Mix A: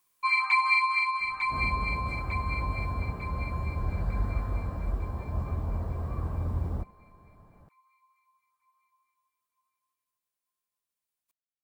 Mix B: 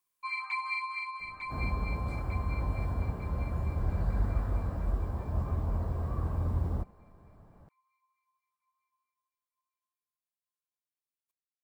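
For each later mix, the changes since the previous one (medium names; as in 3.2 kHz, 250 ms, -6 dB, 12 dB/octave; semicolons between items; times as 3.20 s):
first sound -10.5 dB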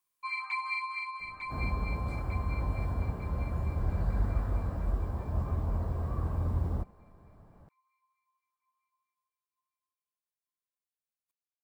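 no change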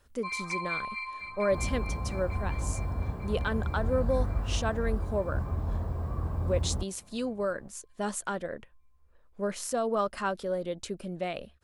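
speech: unmuted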